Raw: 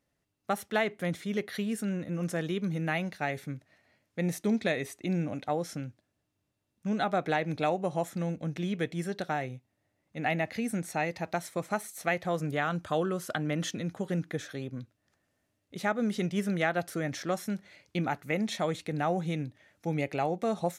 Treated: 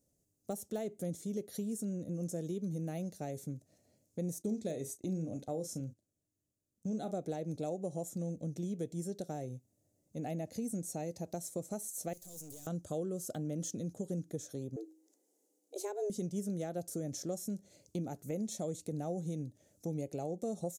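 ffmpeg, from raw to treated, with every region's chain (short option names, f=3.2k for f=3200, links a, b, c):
-filter_complex "[0:a]asettb=1/sr,asplit=3[a][b][c];[a]atrim=end=4.424[d];[b]atrim=start=4.42:end=7.14,asetpts=PTS-STARTPTS,afade=t=in:d=0.004:c=qsin,afade=t=out:st=2.716:d=0.004:c=qsin,asplit=2[e][f];[f]adelay=37,volume=-11dB[g];[e][g]amix=inputs=2:normalize=0,atrim=end_sample=119952,agate=range=-9dB:threshold=-49dB:ratio=16:release=100:detection=peak[h];[c]atrim=start=7.136[i];[d][h]acrossfade=d=0.004:c1=hsin:c2=qsin[j];[j][i]acrossfade=d=0.004:c1=qsin:c2=hsin,asettb=1/sr,asplit=3[k][l][m];[k]atrim=end=12.134[n];[l]atrim=start=12.13:end=12.67,asetpts=PTS-STARTPTS,afade=t=in:d=0.004:c=qsin,afade=t=out:st=0.536:d=0.004:c=qsin,aemphasis=mode=production:type=riaa,acrossover=split=320|3000[o][p][q];[p]acompressor=threshold=-45dB:ratio=6:attack=3.2:release=140:knee=2.83:detection=peak[r];[o][r][q]amix=inputs=3:normalize=0,aeval=exprs='(tanh(316*val(0)+0.3)-tanh(0.3))/316':c=same[s];[m]atrim=start=12.666[t];[n][s]acrossfade=d=0.004:c1=hsin:c2=qsin[u];[u][t]acrossfade=d=0.004:c1=qsin:c2=hsin,asettb=1/sr,asplit=3[v][w][x];[v]atrim=end=14.764[y];[w]atrim=start=14.76:end=16.1,asetpts=PTS-STARTPTS,afade=t=in:d=0.004:c=qsin,afade=t=out:st=1.336:d=0.004:c=qsin,bandreject=f=58.66:t=h:w=4,bandreject=f=117.32:t=h:w=4,bandreject=f=175.98:t=h:w=4,afreqshift=200[z];[x]atrim=start=16.096[aa];[y][z]acrossfade=d=0.004:c1=hsin:c2=qsin[ab];[ab][aa]acrossfade=d=0.004:c1=qsin:c2=hsin,deesser=0.8,firequalizer=gain_entry='entry(530,0);entry(980,-17);entry(1900,-22);entry(6700,8);entry(10000,5)':delay=0.05:min_phase=1,acompressor=threshold=-42dB:ratio=2,volume=1.5dB"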